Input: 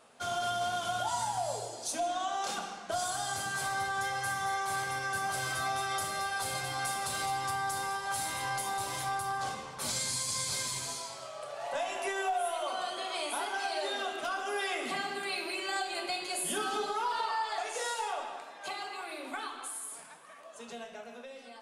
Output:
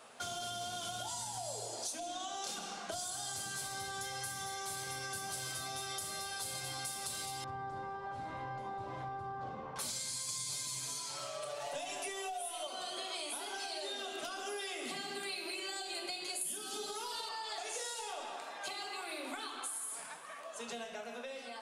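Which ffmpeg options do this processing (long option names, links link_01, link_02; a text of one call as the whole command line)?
ffmpeg -i in.wav -filter_complex "[0:a]asettb=1/sr,asplit=3[link_01][link_02][link_03];[link_01]atrim=end=7.444[link_04];[link_02]atrim=start=7.44:end=9.76,asetpts=PTS-STARTPTS,afade=type=in:duration=0.004:curve=qsin,afade=type=out:start_time=2.316:duration=0.004:curve=qsin,lowpass=1100[link_05];[link_03]atrim=start=9.756[link_06];[link_04][link_05]acrossfade=duration=0.004:curve1=hsin:curve2=qsin[link_07];[link_07][link_06]acrossfade=duration=0.004:curve1=qsin:curve2=hsin,asettb=1/sr,asplit=3[link_08][link_09][link_10];[link_08]atrim=end=10.284[link_11];[link_09]atrim=start=10.28:end=12.67,asetpts=PTS-STARTPTS,afade=type=in:duration=0.004:curve=qsin,afade=type=out:start_time=2.386:duration=0.004:curve=qsin,aecho=1:1:6.8:0.99,atrim=end_sample=105399[link_12];[link_10]atrim=start=12.666[link_13];[link_11][link_12]acrossfade=duration=0.004:curve1=hsin:curve2=qsin[link_14];[link_14][link_13]acrossfade=duration=0.004:curve1=qsin:curve2=hsin,asettb=1/sr,asplit=3[link_15][link_16][link_17];[link_15]atrim=end=16.414[link_18];[link_16]atrim=start=16.41:end=17.29,asetpts=PTS-STARTPTS,afade=type=in:duration=0.004:curve=qsin,afade=type=out:start_time=0.876:duration=0.004:curve=qsin,highshelf=frequency=5900:gain=10.5[link_19];[link_17]atrim=start=17.286[link_20];[link_18][link_19]acrossfade=duration=0.004:curve1=hsin:curve2=qsin[link_21];[link_21][link_20]acrossfade=duration=0.004:curve1=qsin:curve2=hsin,acrossover=split=490|3000[link_22][link_23][link_24];[link_23]acompressor=threshold=-46dB:ratio=6[link_25];[link_22][link_25][link_24]amix=inputs=3:normalize=0,lowshelf=frequency=460:gain=-5.5,acompressor=threshold=-43dB:ratio=6,volume=5dB" out.wav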